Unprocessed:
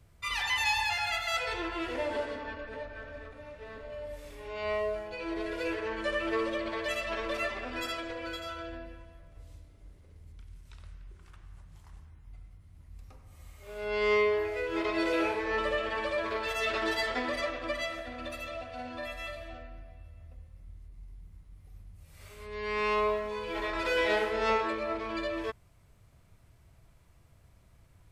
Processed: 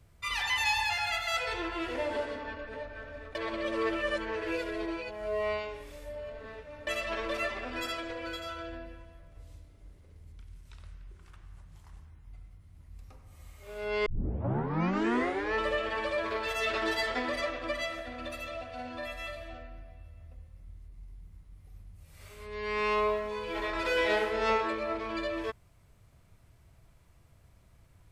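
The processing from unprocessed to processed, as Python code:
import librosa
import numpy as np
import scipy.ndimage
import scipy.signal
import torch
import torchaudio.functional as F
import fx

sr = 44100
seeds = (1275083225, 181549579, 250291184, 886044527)

y = fx.edit(x, sr, fx.reverse_span(start_s=3.35, length_s=3.52),
    fx.tape_start(start_s=14.06, length_s=1.48), tone=tone)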